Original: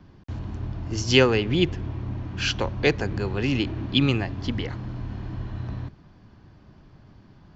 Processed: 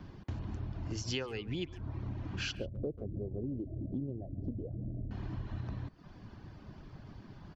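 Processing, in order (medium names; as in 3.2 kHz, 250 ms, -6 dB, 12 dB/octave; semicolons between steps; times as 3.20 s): reverb removal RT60 0.52 s; 2.55–5.11 s: elliptic low-pass 630 Hz, stop band 40 dB; compression 6:1, threshold -38 dBFS, peak gain reduction 24 dB; speakerphone echo 140 ms, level -16 dB; trim +2 dB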